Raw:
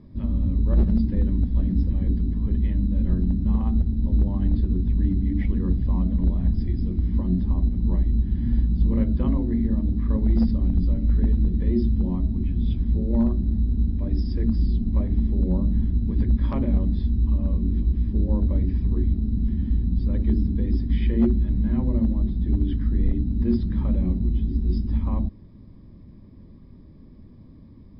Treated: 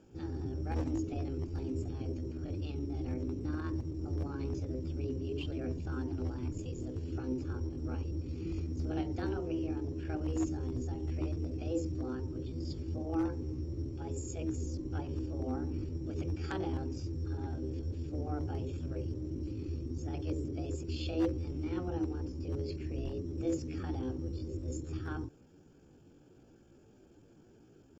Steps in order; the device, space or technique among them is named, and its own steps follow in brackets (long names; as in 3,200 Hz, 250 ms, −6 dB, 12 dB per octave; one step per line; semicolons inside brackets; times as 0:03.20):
chipmunk voice (pitch shifter +6 semitones)
spectral tilt +3 dB per octave
level −6.5 dB